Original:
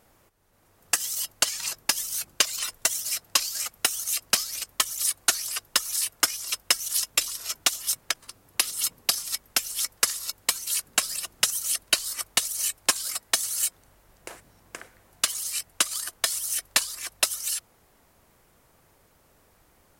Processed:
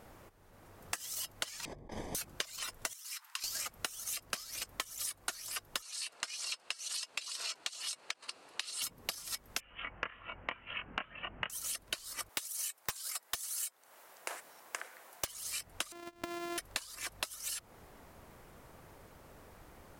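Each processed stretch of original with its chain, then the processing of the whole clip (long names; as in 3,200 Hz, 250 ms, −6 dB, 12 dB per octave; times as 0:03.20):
0:01.65–0:02.15: variable-slope delta modulation 64 kbit/s + moving average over 32 samples + compressor whose output falls as the input rises −47 dBFS
0:02.93–0:03.44: elliptic high-pass filter 950 Hz, stop band 50 dB + downward compressor 4 to 1, threshold −37 dBFS
0:05.82–0:08.82: loudspeaker in its box 470–9,500 Hz, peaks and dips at 2,700 Hz +7 dB, 4,300 Hz +9 dB, 8,400 Hz +3 dB + downward compressor 2 to 1, threshold −33 dBFS
0:09.60–0:11.50: Butterworth low-pass 3,000 Hz 96 dB per octave + parametric band 400 Hz −4 dB 0.51 octaves + double-tracking delay 24 ms −4 dB
0:12.29–0:15.27: high-pass filter 620 Hz + high-shelf EQ 5,800 Hz +6.5 dB + wrap-around overflow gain 7.5 dB
0:15.92–0:16.58: samples sorted by size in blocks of 128 samples + low-shelf EQ 90 Hz −11.5 dB + downward compressor 2 to 1, threshold −52 dBFS
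whole clip: high-shelf EQ 3,200 Hz −8.5 dB; downward compressor 12 to 1, threshold −42 dBFS; level +6.5 dB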